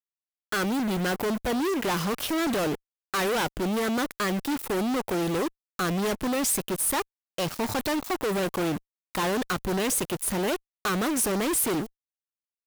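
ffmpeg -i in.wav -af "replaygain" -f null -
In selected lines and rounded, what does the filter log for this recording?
track_gain = +10.1 dB
track_peak = 0.081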